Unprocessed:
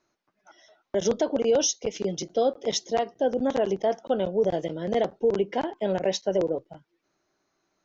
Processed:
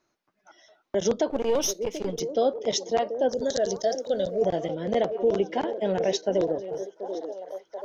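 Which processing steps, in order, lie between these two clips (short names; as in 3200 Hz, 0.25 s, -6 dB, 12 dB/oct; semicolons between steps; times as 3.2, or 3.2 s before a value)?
1.3–2.2 half-wave gain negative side -7 dB; 3.29–4.42 EQ curve 130 Hz 0 dB, 320 Hz -9 dB, 630 Hz +3 dB, 970 Hz -27 dB, 1700 Hz +3 dB, 2500 Hz -18 dB, 4000 Hz +15 dB; delay with a stepping band-pass 0.734 s, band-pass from 380 Hz, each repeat 0.7 oct, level -7 dB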